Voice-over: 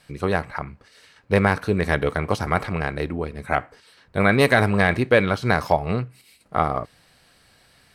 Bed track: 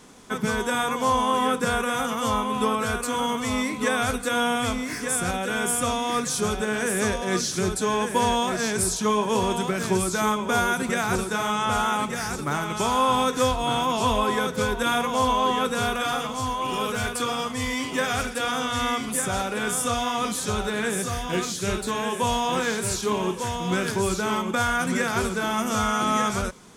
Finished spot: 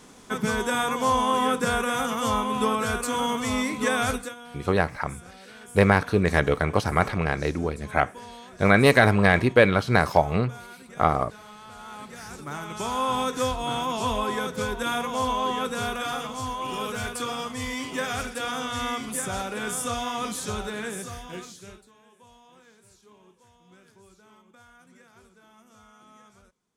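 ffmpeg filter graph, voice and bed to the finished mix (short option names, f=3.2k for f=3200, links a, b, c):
-filter_complex "[0:a]adelay=4450,volume=0dB[a];[1:a]volume=16.5dB,afade=t=out:st=4.12:d=0.23:silence=0.0944061,afade=t=in:st=11.77:d=1.42:silence=0.141254,afade=t=out:st=20.45:d=1.44:silence=0.0473151[b];[a][b]amix=inputs=2:normalize=0"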